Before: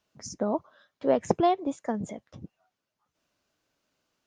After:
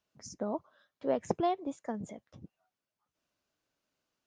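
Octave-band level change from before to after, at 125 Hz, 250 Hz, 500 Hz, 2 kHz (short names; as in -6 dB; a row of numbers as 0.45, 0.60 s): -7.0, -7.0, -7.0, -7.0 dB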